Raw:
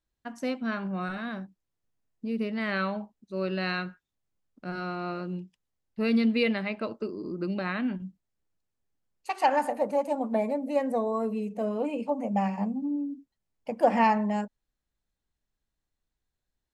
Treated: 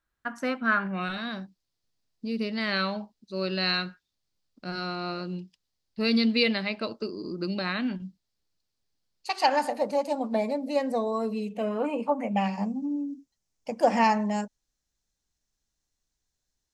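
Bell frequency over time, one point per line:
bell +14 dB 0.97 oct
0.77 s 1400 Hz
1.22 s 4600 Hz
11.41 s 4600 Hz
11.99 s 940 Hz
12.63 s 6000 Hz

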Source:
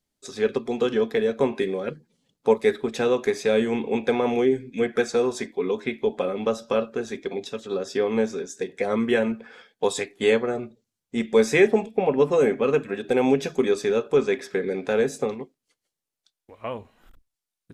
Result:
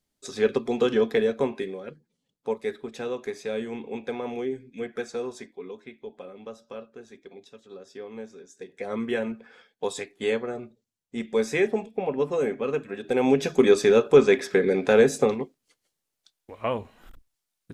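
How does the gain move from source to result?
1.19 s +0.5 dB
1.83 s -9.5 dB
5.29 s -9.5 dB
5.89 s -16 dB
8.37 s -16 dB
8.98 s -6 dB
12.89 s -6 dB
13.69 s +4.5 dB

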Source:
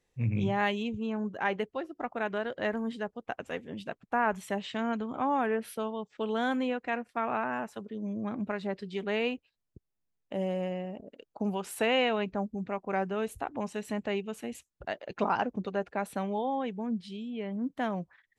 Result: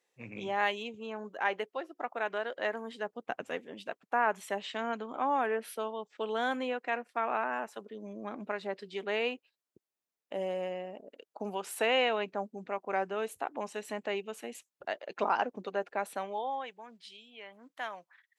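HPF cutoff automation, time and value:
2.94 s 450 Hz
3.36 s 150 Hz
3.7 s 370 Hz
16.01 s 370 Hz
16.82 s 1000 Hz

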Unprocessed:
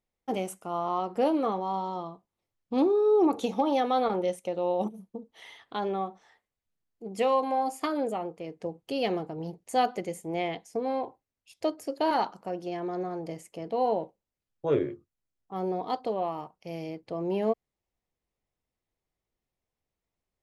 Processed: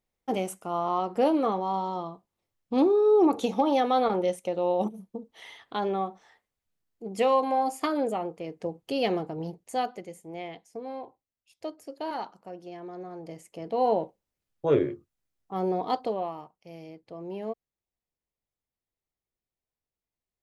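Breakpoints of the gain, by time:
9.42 s +2 dB
10.05 s -7.5 dB
13 s -7.5 dB
13.92 s +3 dB
15.98 s +3 dB
16.56 s -7.5 dB

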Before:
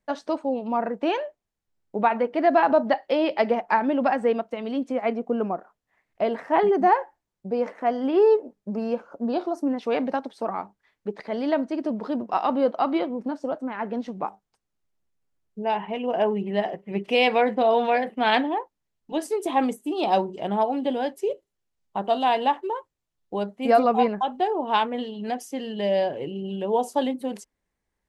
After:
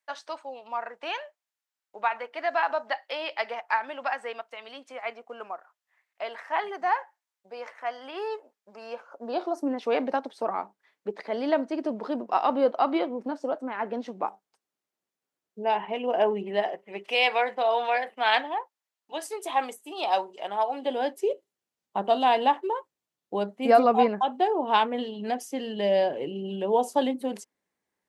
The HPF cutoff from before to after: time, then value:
8.76 s 1100 Hz
9.66 s 300 Hz
16.41 s 300 Hz
17.15 s 730 Hz
20.65 s 730 Hz
21.26 s 200 Hz

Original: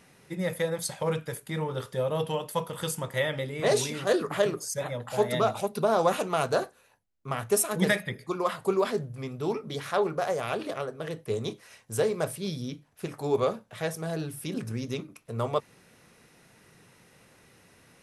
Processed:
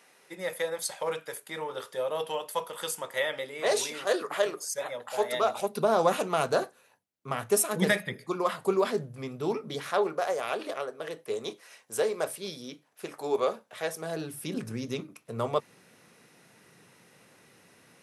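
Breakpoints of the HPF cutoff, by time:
5.39 s 460 Hz
5.85 s 150 Hz
9.68 s 150 Hz
10.23 s 360 Hz
13.84 s 360 Hz
14.56 s 140 Hz

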